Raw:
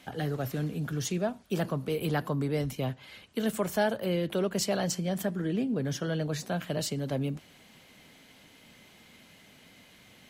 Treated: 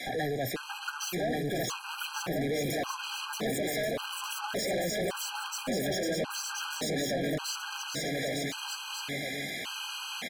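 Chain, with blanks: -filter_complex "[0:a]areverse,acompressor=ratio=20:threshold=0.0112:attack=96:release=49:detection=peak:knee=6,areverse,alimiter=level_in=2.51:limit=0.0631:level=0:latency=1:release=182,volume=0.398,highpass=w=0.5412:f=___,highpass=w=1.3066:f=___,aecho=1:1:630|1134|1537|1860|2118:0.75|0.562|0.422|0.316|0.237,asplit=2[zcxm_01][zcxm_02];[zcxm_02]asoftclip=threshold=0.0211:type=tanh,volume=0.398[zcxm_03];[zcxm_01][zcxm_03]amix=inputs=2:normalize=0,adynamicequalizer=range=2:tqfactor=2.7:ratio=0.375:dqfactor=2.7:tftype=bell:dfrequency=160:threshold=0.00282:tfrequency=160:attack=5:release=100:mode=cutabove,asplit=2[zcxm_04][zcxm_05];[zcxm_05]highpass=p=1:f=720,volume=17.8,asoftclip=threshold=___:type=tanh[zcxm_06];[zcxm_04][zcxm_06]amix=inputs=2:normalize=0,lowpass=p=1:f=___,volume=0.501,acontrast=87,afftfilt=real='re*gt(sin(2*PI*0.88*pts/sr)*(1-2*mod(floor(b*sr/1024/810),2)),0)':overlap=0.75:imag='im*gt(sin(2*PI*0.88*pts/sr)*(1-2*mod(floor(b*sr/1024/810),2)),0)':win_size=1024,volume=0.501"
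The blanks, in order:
80, 80, 0.0631, 7000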